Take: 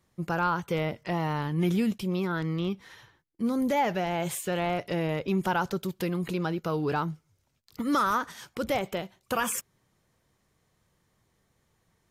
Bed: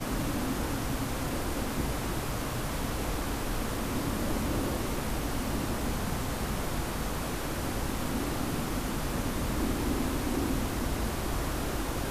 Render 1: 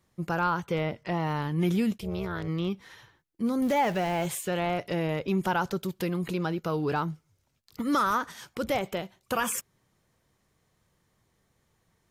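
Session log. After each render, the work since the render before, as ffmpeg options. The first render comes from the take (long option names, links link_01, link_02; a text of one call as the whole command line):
ffmpeg -i in.wav -filter_complex "[0:a]asettb=1/sr,asplit=3[link_01][link_02][link_03];[link_01]atrim=end=0.654[link_04];[link_02]atrim=start=0.65:end=1.27,asetpts=PTS-STARTPTS,afade=type=in:duration=0.004:curve=qsin,afade=type=out:start_time=0.616:duration=0.004:curve=qsin,highshelf=frequency=8000:gain=-9[link_05];[link_03]atrim=start=1.266[link_06];[link_04][link_05]acrossfade=duration=0.004:curve1=hsin:curve2=qsin[link_07];[link_07][link_06]acrossfade=duration=0.004:curve1=qsin:curve2=hsin,asplit=3[link_08][link_09][link_10];[link_08]afade=type=out:start_time=1.96:duration=0.02[link_11];[link_09]tremolo=f=260:d=0.824,afade=type=in:start_time=1.96:duration=0.02,afade=type=out:start_time=2.47:duration=0.02[link_12];[link_10]afade=type=in:start_time=2.47:duration=0.02[link_13];[link_11][link_12][link_13]amix=inputs=3:normalize=0,asettb=1/sr,asplit=3[link_14][link_15][link_16];[link_14]atrim=end=3.624[link_17];[link_15]atrim=start=3.62:end=4.26,asetpts=PTS-STARTPTS,afade=type=in:duration=0.004:curve=qsin,afade=type=out:start_time=0.636:duration=0.004:curve=qsin,aeval=exprs='val(0)+0.5*0.0126*sgn(val(0))':channel_layout=same[link_18];[link_16]atrim=start=4.256[link_19];[link_17][link_18]acrossfade=duration=0.004:curve1=hsin:curve2=qsin[link_20];[link_20][link_19]acrossfade=duration=0.004:curve1=qsin:curve2=hsin" out.wav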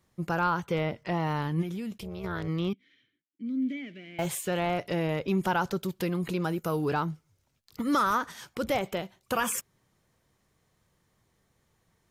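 ffmpeg -i in.wav -filter_complex "[0:a]asplit=3[link_01][link_02][link_03];[link_01]afade=type=out:start_time=1.61:duration=0.02[link_04];[link_02]acompressor=threshold=-35dB:ratio=3:attack=3.2:release=140:knee=1:detection=peak,afade=type=in:start_time=1.61:duration=0.02,afade=type=out:start_time=2.23:duration=0.02[link_05];[link_03]afade=type=in:start_time=2.23:duration=0.02[link_06];[link_04][link_05][link_06]amix=inputs=3:normalize=0,asettb=1/sr,asplit=3[link_07][link_08][link_09];[link_07]atrim=end=2.734[link_10];[link_08]atrim=start=2.73:end=4.19,asetpts=PTS-STARTPTS,afade=type=in:duration=0.004:curve=qsin,afade=type=out:start_time=1.456:duration=0.004:curve=qsin,asplit=3[link_11][link_12][link_13];[link_11]bandpass=frequency=270:width_type=q:width=8,volume=0dB[link_14];[link_12]bandpass=frequency=2290:width_type=q:width=8,volume=-6dB[link_15];[link_13]bandpass=frequency=3010:width_type=q:width=8,volume=-9dB[link_16];[link_14][link_15][link_16]amix=inputs=3:normalize=0[link_17];[link_09]atrim=start=4.186[link_18];[link_10][link_17]acrossfade=duration=0.004:curve1=hsin:curve2=qsin[link_19];[link_19][link_18]acrossfade=duration=0.004:curve1=qsin:curve2=hsin,asettb=1/sr,asplit=3[link_20][link_21][link_22];[link_20]atrim=end=6.444[link_23];[link_21]atrim=start=6.44:end=6.89,asetpts=PTS-STARTPTS,afade=type=in:duration=0.004:curve=qsin,afade=type=out:start_time=0.446:duration=0.004:curve=qsin,highshelf=frequency=6300:width_type=q:width=1.5:gain=10[link_24];[link_22]atrim=start=6.886[link_25];[link_23][link_24]acrossfade=duration=0.004:curve1=hsin:curve2=qsin[link_26];[link_26][link_25]acrossfade=duration=0.004:curve1=qsin:curve2=hsin" out.wav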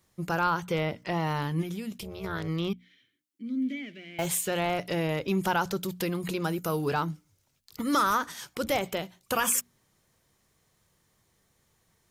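ffmpeg -i in.wav -af "highshelf=frequency=3400:gain=7,bandreject=frequency=60:width_type=h:width=6,bandreject=frequency=120:width_type=h:width=6,bandreject=frequency=180:width_type=h:width=6,bandreject=frequency=240:width_type=h:width=6,bandreject=frequency=300:width_type=h:width=6" out.wav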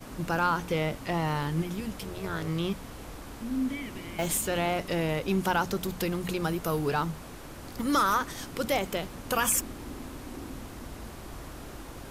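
ffmpeg -i in.wav -i bed.wav -filter_complex "[1:a]volume=-10.5dB[link_01];[0:a][link_01]amix=inputs=2:normalize=0" out.wav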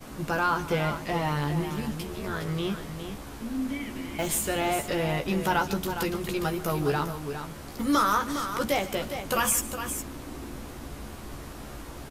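ffmpeg -i in.wav -filter_complex "[0:a]asplit=2[link_01][link_02];[link_02]adelay=14,volume=-5.5dB[link_03];[link_01][link_03]amix=inputs=2:normalize=0,aecho=1:1:145|410:0.141|0.355" out.wav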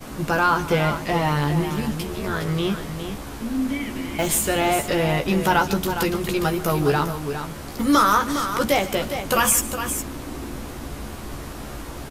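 ffmpeg -i in.wav -af "volume=6.5dB" out.wav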